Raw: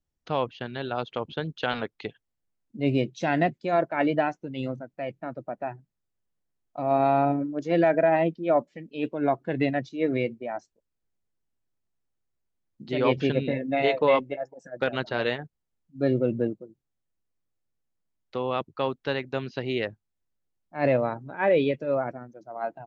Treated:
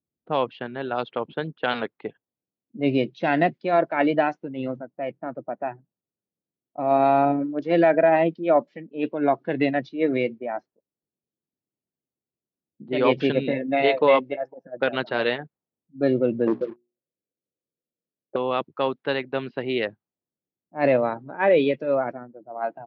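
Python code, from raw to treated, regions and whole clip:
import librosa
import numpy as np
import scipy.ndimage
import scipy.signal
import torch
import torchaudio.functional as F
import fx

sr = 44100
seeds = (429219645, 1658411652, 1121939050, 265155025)

y = fx.chain(x, sr, fx.lowpass_res(hz=530.0, q=2.6),
    fx.hum_notches(base_hz=60, count=7),
    fx.leveller(passes=2), at=(16.47, 18.36))
y = scipy.signal.sosfilt(scipy.signal.butter(2, 180.0, 'highpass', fs=sr, output='sos'), y)
y = fx.env_lowpass(y, sr, base_hz=450.0, full_db=-22.5)
y = scipy.signal.sosfilt(scipy.signal.butter(4, 5000.0, 'lowpass', fs=sr, output='sos'), y)
y = y * librosa.db_to_amplitude(3.5)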